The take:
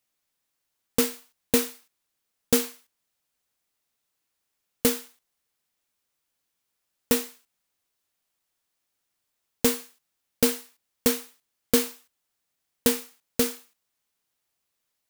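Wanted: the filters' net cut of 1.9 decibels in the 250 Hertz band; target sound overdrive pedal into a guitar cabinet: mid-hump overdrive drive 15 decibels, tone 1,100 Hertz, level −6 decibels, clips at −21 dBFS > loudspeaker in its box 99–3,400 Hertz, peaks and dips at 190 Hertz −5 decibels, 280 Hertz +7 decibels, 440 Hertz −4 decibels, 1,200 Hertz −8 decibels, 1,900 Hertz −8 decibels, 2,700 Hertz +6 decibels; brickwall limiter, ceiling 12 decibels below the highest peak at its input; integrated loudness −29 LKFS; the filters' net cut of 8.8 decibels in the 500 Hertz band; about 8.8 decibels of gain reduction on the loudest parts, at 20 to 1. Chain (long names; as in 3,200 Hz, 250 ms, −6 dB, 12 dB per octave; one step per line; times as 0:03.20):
parametric band 250 Hz −3.5 dB
parametric band 500 Hz −5.5 dB
downward compressor 20 to 1, threshold −27 dBFS
brickwall limiter −21 dBFS
mid-hump overdrive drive 15 dB, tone 1,100 Hz, level −6 dB, clips at −21 dBFS
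loudspeaker in its box 99–3,400 Hz, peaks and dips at 190 Hz −5 dB, 280 Hz +7 dB, 440 Hz −4 dB, 1,200 Hz −8 dB, 1,900 Hz −8 dB, 2,700 Hz +6 dB
level +18 dB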